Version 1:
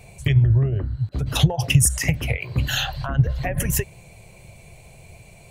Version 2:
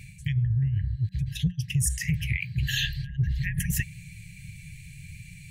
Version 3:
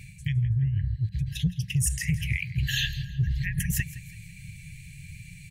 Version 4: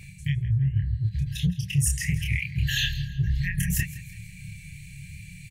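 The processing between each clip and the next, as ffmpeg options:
-af "equalizer=f=450:w=0.39:g=10.5,afftfilt=real='re*(1-between(b*sr/4096,190,1600))':imag='im*(1-between(b*sr/4096,190,1600))':win_size=4096:overlap=0.75,areverse,acompressor=threshold=-24dB:ratio=5,areverse"
-af "asoftclip=type=hard:threshold=-14.5dB,aecho=1:1:165|330|495:0.133|0.0493|0.0183"
-filter_complex "[0:a]asplit=2[a][b];[b]adelay=28,volume=-3.5dB[c];[a][c]amix=inputs=2:normalize=0"

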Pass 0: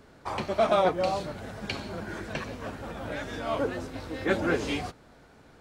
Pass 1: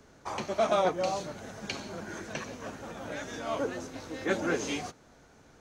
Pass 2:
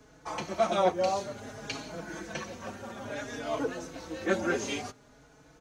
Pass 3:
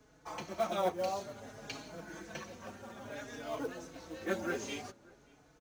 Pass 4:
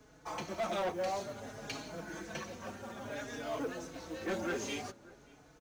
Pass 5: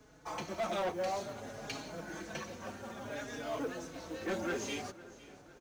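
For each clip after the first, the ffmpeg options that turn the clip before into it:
-filter_complex "[0:a]equalizer=f=6.3k:t=o:w=0.32:g=12,acrossover=split=120|2400[a][b][c];[a]acompressor=threshold=-54dB:ratio=6[d];[d][b][c]amix=inputs=3:normalize=0,volume=-3dB"
-filter_complex "[0:a]asplit=2[a][b];[b]adelay=4.3,afreqshift=0.57[c];[a][c]amix=inputs=2:normalize=1,volume=3dB"
-filter_complex "[0:a]acrusher=bits=6:mode=log:mix=0:aa=0.000001,asplit=2[a][b];[b]adelay=583.1,volume=-24dB,highshelf=f=4k:g=-13.1[c];[a][c]amix=inputs=2:normalize=0,volume=-7dB"
-af "asoftclip=type=tanh:threshold=-33.5dB,volume=3.5dB"
-af "aecho=1:1:505|1010|1515|2020:0.112|0.0606|0.0327|0.0177"

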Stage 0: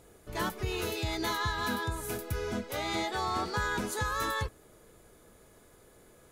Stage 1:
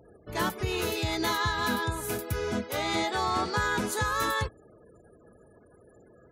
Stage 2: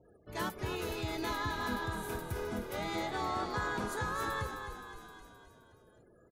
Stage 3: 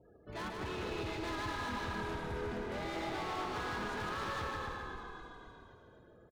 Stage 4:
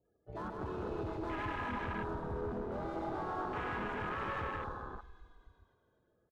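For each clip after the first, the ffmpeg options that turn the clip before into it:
-af "afftfilt=real='re*gte(hypot(re,im),0.00178)':imag='im*gte(hypot(re,im),0.00178)':win_size=1024:overlap=0.75,highpass=66,volume=4dB"
-filter_complex "[0:a]asplit=2[a][b];[b]asplit=6[c][d][e][f][g][h];[c]adelay=261,afreqshift=-38,volume=-7dB[i];[d]adelay=522,afreqshift=-76,volume=-12.5dB[j];[e]adelay=783,afreqshift=-114,volume=-18dB[k];[f]adelay=1044,afreqshift=-152,volume=-23.5dB[l];[g]adelay=1305,afreqshift=-190,volume=-29.1dB[m];[h]adelay=1566,afreqshift=-228,volume=-34.6dB[n];[i][j][k][l][m][n]amix=inputs=6:normalize=0[o];[a][o]amix=inputs=2:normalize=0,adynamicequalizer=threshold=0.00708:dfrequency=2200:dqfactor=0.7:tfrequency=2200:tqfactor=0.7:attack=5:release=100:ratio=0.375:range=2.5:mode=cutabove:tftype=highshelf,volume=-7.5dB"
-filter_complex "[0:a]lowpass=3.8k,asoftclip=type=hard:threshold=-38.5dB,asplit=2[a][b];[b]aecho=0:1:150|262.5|346.9|410.2|457.6:0.631|0.398|0.251|0.158|0.1[c];[a][c]amix=inputs=2:normalize=0"
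-af "afwtdn=0.01,volume=1dB"

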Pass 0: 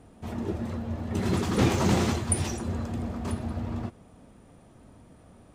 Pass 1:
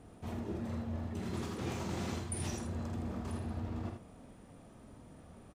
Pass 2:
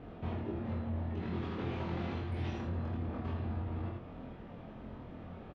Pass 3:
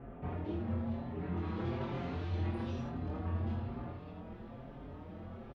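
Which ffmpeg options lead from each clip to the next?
-af "areverse,acompressor=threshold=-34dB:ratio=6,areverse,aecho=1:1:47|79:0.422|0.473,volume=-3dB"
-filter_complex "[0:a]lowpass=f=3.4k:w=0.5412,lowpass=f=3.4k:w=1.3066,acompressor=threshold=-42dB:ratio=6,asplit=2[a][b];[b]adelay=23,volume=-2dB[c];[a][c]amix=inputs=2:normalize=0,volume=5.5dB"
-filter_complex "[0:a]acrossover=split=2500[a][b];[b]adelay=220[c];[a][c]amix=inputs=2:normalize=0,asplit=2[d][e];[e]adelay=5.5,afreqshift=1.1[f];[d][f]amix=inputs=2:normalize=1,volume=3dB"

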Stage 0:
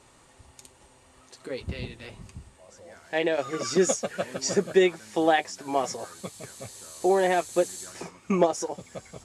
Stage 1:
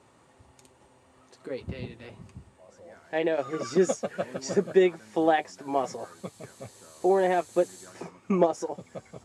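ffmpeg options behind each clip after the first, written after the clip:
-af "highpass=92,highshelf=f=2.2k:g=-10"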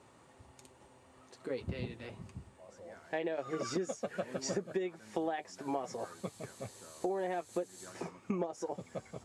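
-af "acompressor=threshold=-30dB:ratio=16,volume=-1.5dB"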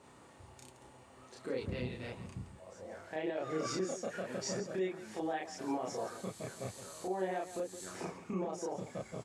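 -filter_complex "[0:a]alimiter=level_in=7dB:limit=-24dB:level=0:latency=1:release=53,volume=-7dB,asplit=2[a][b];[b]aecho=0:1:32.07|169.1:1|0.282[c];[a][c]amix=inputs=2:normalize=0"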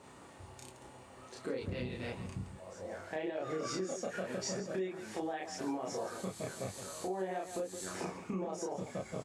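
-filter_complex "[0:a]acompressor=threshold=-38dB:ratio=6,asplit=2[a][b];[b]adelay=21,volume=-11.5dB[c];[a][c]amix=inputs=2:normalize=0,volume=3.5dB"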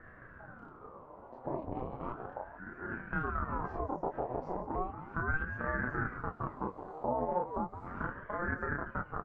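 -af "aeval=exprs='0.0562*(cos(1*acos(clip(val(0)/0.0562,-1,1)))-cos(1*PI/2))+0.01*(cos(4*acos(clip(val(0)/0.0562,-1,1)))-cos(4*PI/2))':c=same,lowpass=f=790:t=q:w=4.3,aeval=exprs='val(0)*sin(2*PI*510*n/s+510*0.75/0.35*sin(2*PI*0.35*n/s))':c=same"

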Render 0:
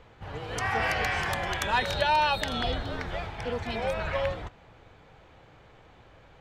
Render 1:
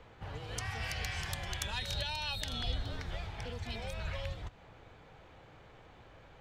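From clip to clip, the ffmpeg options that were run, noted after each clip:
-filter_complex "[0:a]acrossover=split=140|3000[a][b][c];[b]acompressor=threshold=-44dB:ratio=4[d];[a][d][c]amix=inputs=3:normalize=0,volume=-2dB"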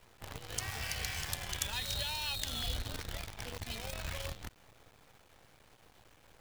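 -af "highshelf=f=4.7k:g=10.5,acrusher=bits=7:dc=4:mix=0:aa=0.000001,volume=-3dB"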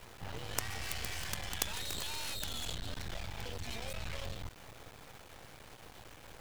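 -af "aeval=exprs='max(val(0),0)':c=same,aeval=exprs='0.237*(cos(1*acos(clip(val(0)/0.237,-1,1)))-cos(1*PI/2))+0.0596*(cos(8*acos(clip(val(0)/0.237,-1,1)))-cos(8*PI/2))':c=same,volume=9.5dB"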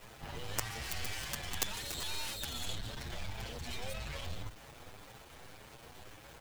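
-filter_complex "[0:a]asplit=2[a][b];[b]adelay=7.4,afreqshift=1.8[c];[a][c]amix=inputs=2:normalize=1,volume=3dB"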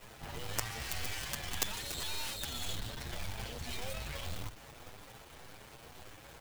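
-af "acrusher=bits=2:mode=log:mix=0:aa=0.000001"

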